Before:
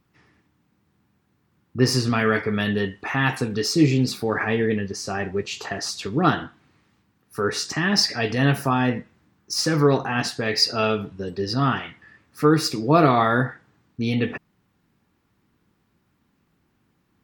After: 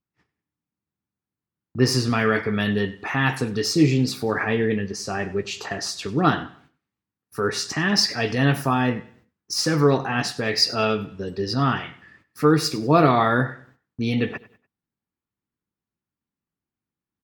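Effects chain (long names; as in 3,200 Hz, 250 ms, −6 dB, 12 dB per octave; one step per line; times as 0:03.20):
noise gate −55 dBFS, range −23 dB
repeating echo 97 ms, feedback 36%, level −19 dB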